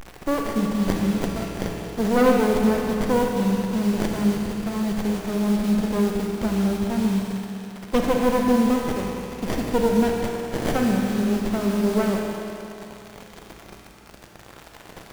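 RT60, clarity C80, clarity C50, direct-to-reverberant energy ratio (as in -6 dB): 2.8 s, 2.0 dB, 1.0 dB, 0.5 dB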